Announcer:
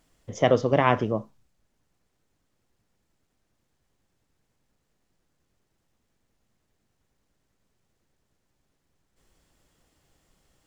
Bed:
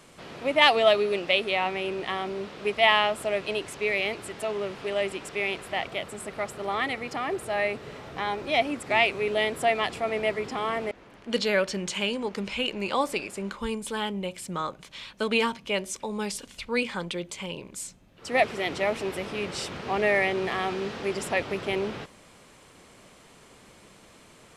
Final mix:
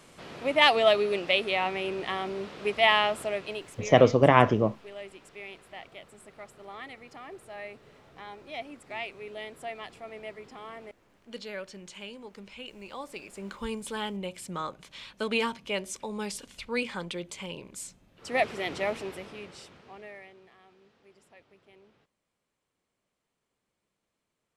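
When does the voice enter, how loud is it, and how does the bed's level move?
3.50 s, +2.0 dB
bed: 3.16 s -1.5 dB
4.09 s -14.5 dB
13.01 s -14.5 dB
13.60 s -3.5 dB
18.89 s -3.5 dB
20.56 s -30 dB

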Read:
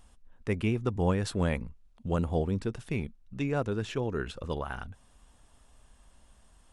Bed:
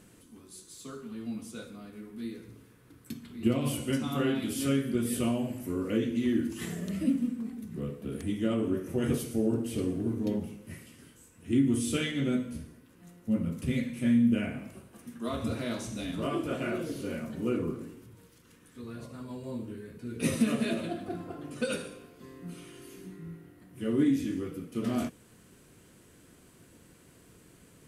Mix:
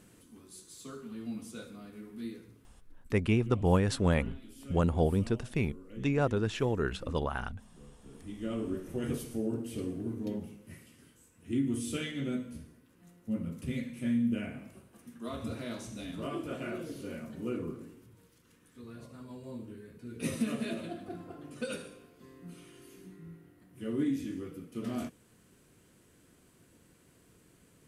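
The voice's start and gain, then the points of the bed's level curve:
2.65 s, +1.5 dB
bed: 2.28 s -2 dB
3.20 s -19.5 dB
7.96 s -19.5 dB
8.56 s -5.5 dB

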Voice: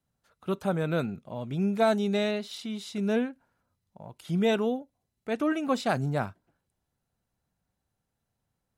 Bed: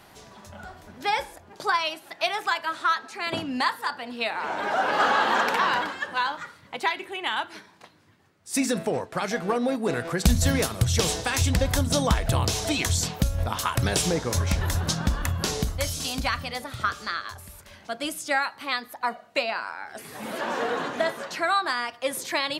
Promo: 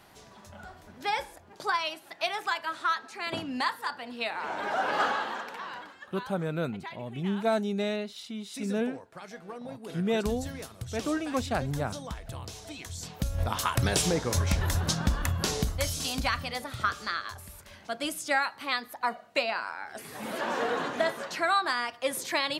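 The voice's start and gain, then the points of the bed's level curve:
5.65 s, -3.0 dB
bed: 5.01 s -4.5 dB
5.47 s -16.5 dB
12.91 s -16.5 dB
13.42 s -2 dB

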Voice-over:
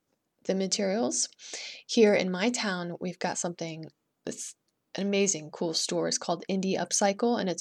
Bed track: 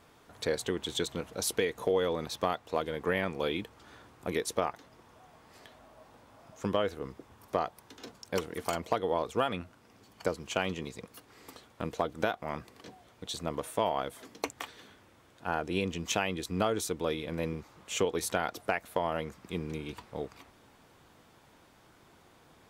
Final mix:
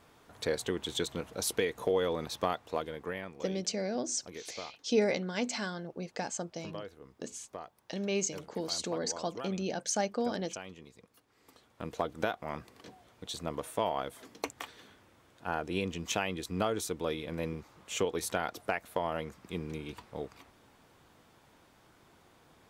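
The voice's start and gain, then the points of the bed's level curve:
2.95 s, -6.0 dB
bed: 2.66 s -1 dB
3.45 s -13.5 dB
11.32 s -13.5 dB
11.99 s -2 dB

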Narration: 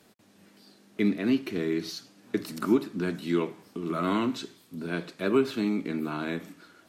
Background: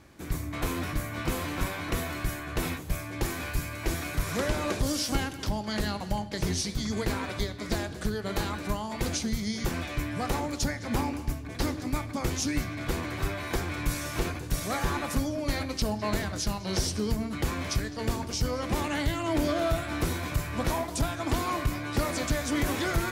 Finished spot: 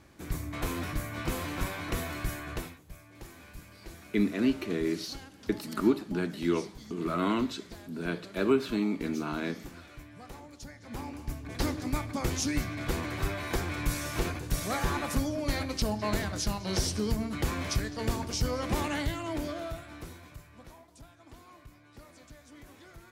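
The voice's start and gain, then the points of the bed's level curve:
3.15 s, -1.5 dB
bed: 2.53 s -2.5 dB
2.74 s -17 dB
10.64 s -17 dB
11.54 s -1 dB
18.86 s -1 dB
20.78 s -24 dB

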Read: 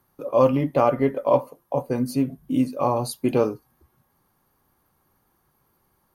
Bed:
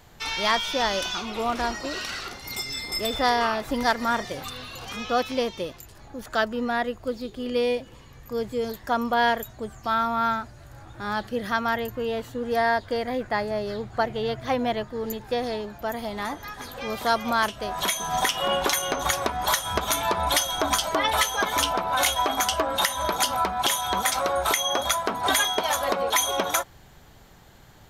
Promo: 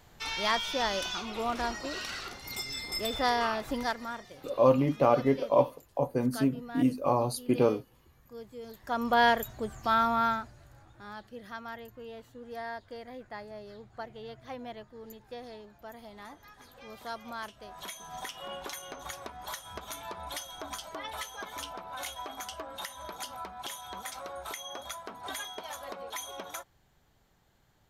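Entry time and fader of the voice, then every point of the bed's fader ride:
4.25 s, -4.5 dB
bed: 3.71 s -5.5 dB
4.22 s -16.5 dB
8.61 s -16.5 dB
9.14 s -1.5 dB
10.12 s -1.5 dB
11.17 s -16.5 dB

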